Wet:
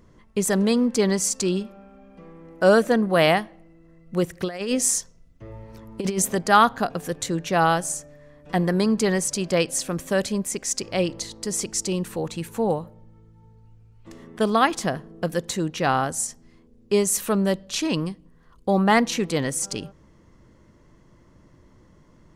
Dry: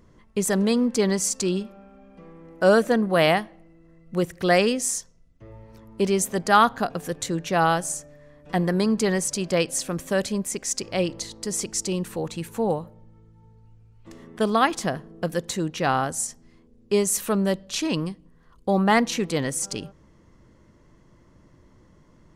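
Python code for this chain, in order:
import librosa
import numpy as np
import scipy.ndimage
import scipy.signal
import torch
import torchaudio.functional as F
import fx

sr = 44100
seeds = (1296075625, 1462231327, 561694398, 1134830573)

y = fx.over_compress(x, sr, threshold_db=-24.0, ratio=-0.5, at=(4.43, 6.35))
y = F.gain(torch.from_numpy(y), 1.0).numpy()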